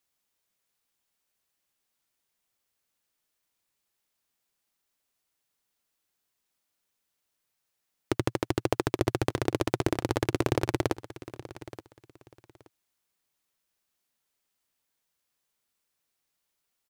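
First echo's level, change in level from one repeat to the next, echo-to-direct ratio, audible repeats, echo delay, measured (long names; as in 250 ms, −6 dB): −16.0 dB, −13.0 dB, −16.0 dB, 2, 875 ms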